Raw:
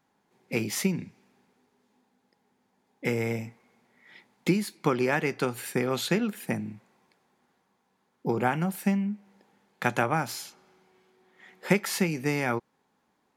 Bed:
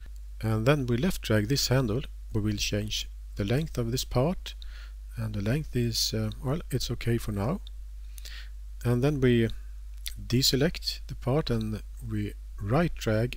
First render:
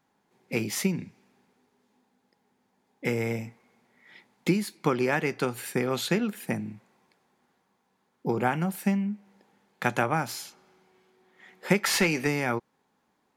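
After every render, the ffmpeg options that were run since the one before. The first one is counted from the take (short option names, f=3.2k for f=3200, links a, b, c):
-filter_complex "[0:a]asplit=3[a][b][c];[a]afade=t=out:st=11.83:d=0.02[d];[b]asplit=2[e][f];[f]highpass=f=720:p=1,volume=17dB,asoftclip=type=tanh:threshold=-12dB[g];[e][g]amix=inputs=2:normalize=0,lowpass=f=4.5k:p=1,volume=-6dB,afade=t=in:st=11.83:d=0.02,afade=t=out:st=12.26:d=0.02[h];[c]afade=t=in:st=12.26:d=0.02[i];[d][h][i]amix=inputs=3:normalize=0"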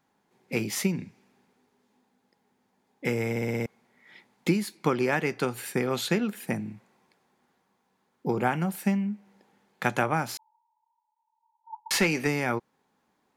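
-filter_complex "[0:a]asettb=1/sr,asplit=3[a][b][c];[a]atrim=end=10.374[d];[b]atrim=start=10.37:end=11.91,asetpts=PTS-STARTPTS,afade=t=in:d=0.004:c=qsin,afade=t=out:st=1.536:d=0.004:c=qsin,asuperpass=centerf=910:order=20:qfactor=7.1[e];[c]atrim=start=11.906[f];[d][e]acrossfade=d=0.004:c1=hsin:c2=qsin[g];[g][f]acrossfade=d=0.004:c1=qsin:c2=hsin,asplit=7[h][i][j][k][l][m][n];[h]atrim=end=3.362[o];[i]atrim=start=3.298:end=3.362[p];[j]atrim=start=3.298:end=3.362[q];[k]atrim=start=3.298:end=3.362[r];[l]atrim=start=3.298:end=3.362[s];[m]atrim=start=3.298:end=3.362[t];[n]atrim=start=3.658[u];[o][p]acrossfade=d=0.004:c1=hsin:c2=hsin[v];[v][q]acrossfade=d=0.004:c1=hsin:c2=hsin[w];[w][r]acrossfade=d=0.004:c1=hsin:c2=hsin[x];[x][s]acrossfade=d=0.004:c1=hsin:c2=hsin[y];[y][t]acrossfade=d=0.004:c1=hsin:c2=hsin[z];[z][u]acrossfade=d=0.004:c1=hsin:c2=hsin"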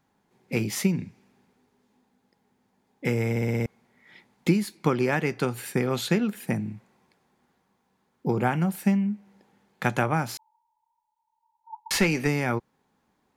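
-af "lowshelf=f=130:g=11"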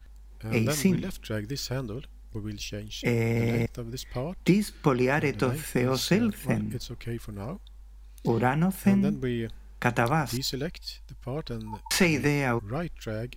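-filter_complex "[1:a]volume=-7dB[a];[0:a][a]amix=inputs=2:normalize=0"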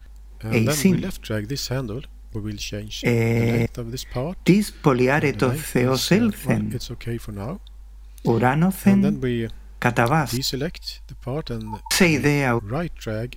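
-af "volume=6dB,alimiter=limit=-2dB:level=0:latency=1"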